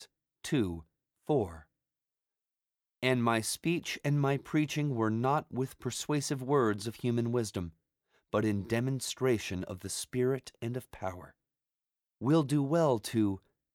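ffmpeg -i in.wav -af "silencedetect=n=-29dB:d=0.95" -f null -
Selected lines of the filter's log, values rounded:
silence_start: 1.44
silence_end: 3.03 | silence_duration: 1.59
silence_start: 11.10
silence_end: 12.23 | silence_duration: 1.14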